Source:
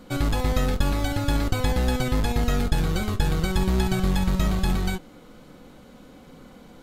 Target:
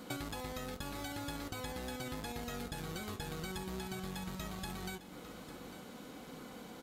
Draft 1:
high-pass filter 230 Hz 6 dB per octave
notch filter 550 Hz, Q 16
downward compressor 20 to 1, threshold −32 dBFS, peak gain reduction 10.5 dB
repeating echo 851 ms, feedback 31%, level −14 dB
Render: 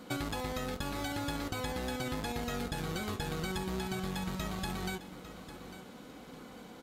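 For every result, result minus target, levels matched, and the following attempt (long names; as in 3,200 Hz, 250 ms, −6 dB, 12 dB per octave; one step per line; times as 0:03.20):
downward compressor: peak gain reduction −6 dB; 8,000 Hz band −3.0 dB
high-pass filter 230 Hz 6 dB per octave
notch filter 550 Hz, Q 16
downward compressor 20 to 1, threshold −38 dBFS, peak gain reduction 16 dB
repeating echo 851 ms, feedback 31%, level −14 dB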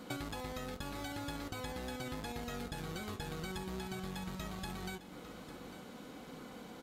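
8,000 Hz band −2.5 dB
high-pass filter 230 Hz 6 dB per octave
high-shelf EQ 6,900 Hz +5 dB
notch filter 550 Hz, Q 16
downward compressor 20 to 1, threshold −38 dBFS, peak gain reduction 16 dB
repeating echo 851 ms, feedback 31%, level −14 dB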